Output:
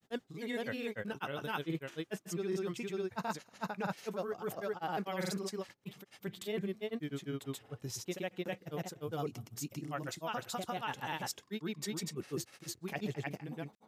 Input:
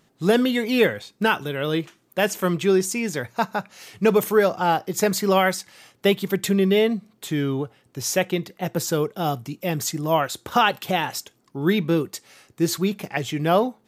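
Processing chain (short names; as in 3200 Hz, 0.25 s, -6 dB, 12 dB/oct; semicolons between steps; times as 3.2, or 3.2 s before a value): reverse; compressor 6:1, threshold -30 dBFS, peak gain reduction 16.5 dB; reverse; grains 0.1 s, grains 20/s, spray 0.33 s, pitch spread up and down by 0 st; gain -4 dB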